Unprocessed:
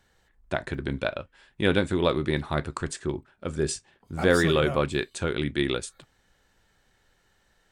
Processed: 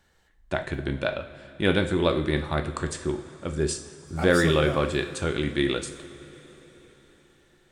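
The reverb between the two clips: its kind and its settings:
coupled-rooms reverb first 0.56 s, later 4.8 s, from −16 dB, DRR 6.5 dB

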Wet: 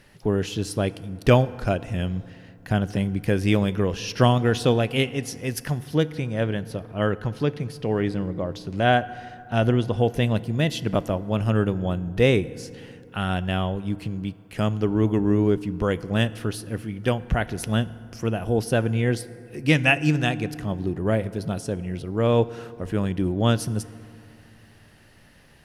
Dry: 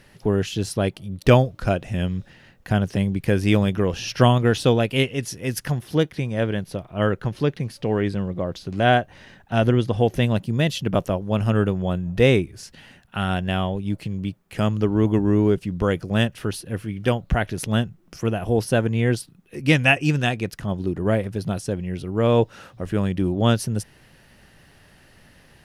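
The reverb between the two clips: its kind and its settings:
feedback delay network reverb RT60 2.6 s, low-frequency decay 1.2×, high-frequency decay 0.45×, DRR 16 dB
level −2 dB

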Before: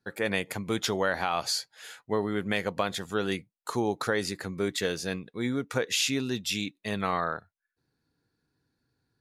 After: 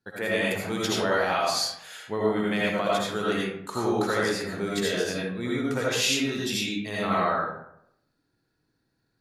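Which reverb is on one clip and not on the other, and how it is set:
comb and all-pass reverb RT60 0.75 s, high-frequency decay 0.55×, pre-delay 40 ms, DRR −6 dB
level −3 dB

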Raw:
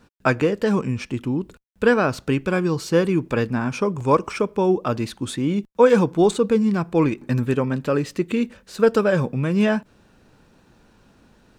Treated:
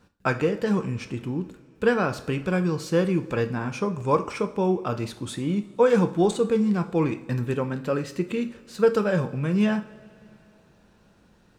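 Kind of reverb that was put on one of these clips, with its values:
coupled-rooms reverb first 0.45 s, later 3.2 s, from −20 dB, DRR 7.5 dB
level −5 dB

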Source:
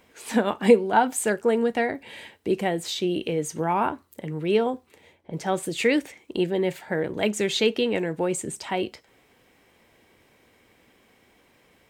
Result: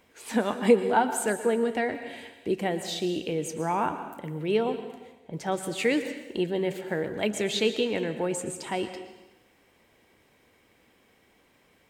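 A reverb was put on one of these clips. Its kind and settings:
dense smooth reverb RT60 1 s, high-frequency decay 0.95×, pre-delay 105 ms, DRR 9.5 dB
level −3.5 dB

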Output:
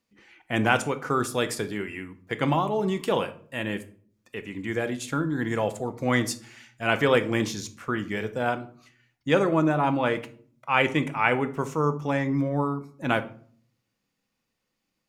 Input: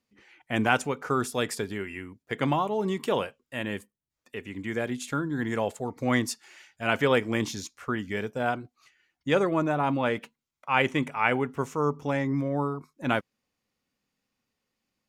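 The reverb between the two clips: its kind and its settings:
rectangular room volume 560 cubic metres, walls furnished, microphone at 0.7 metres
level +1.5 dB

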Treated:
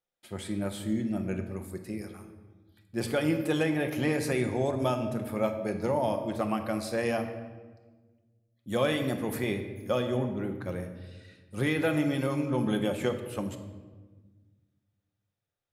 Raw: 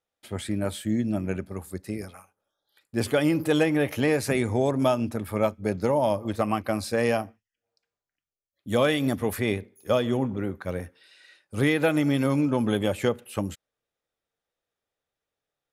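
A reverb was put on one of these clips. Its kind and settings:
rectangular room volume 1,100 cubic metres, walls mixed, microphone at 0.91 metres
level −5.5 dB

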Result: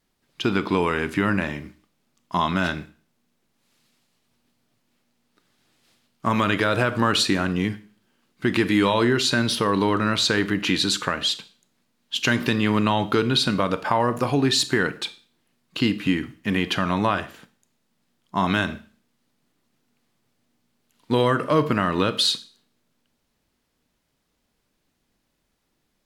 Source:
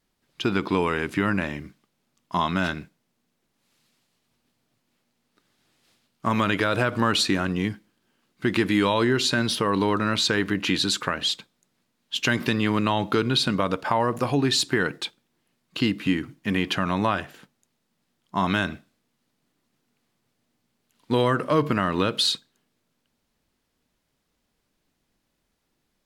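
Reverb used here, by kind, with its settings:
four-comb reverb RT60 0.43 s, combs from 26 ms, DRR 13.5 dB
level +1.5 dB

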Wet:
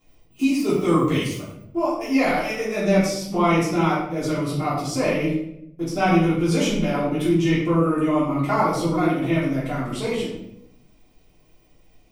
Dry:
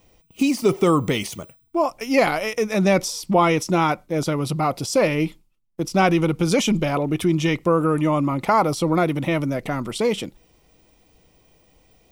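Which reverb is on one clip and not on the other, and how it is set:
rectangular room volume 180 cubic metres, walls mixed, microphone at 3.2 metres
level −12.5 dB

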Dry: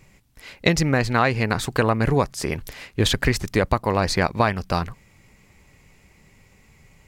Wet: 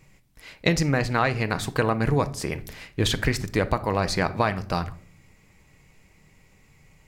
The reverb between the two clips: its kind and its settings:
rectangular room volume 710 cubic metres, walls furnished, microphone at 0.58 metres
level −3.5 dB

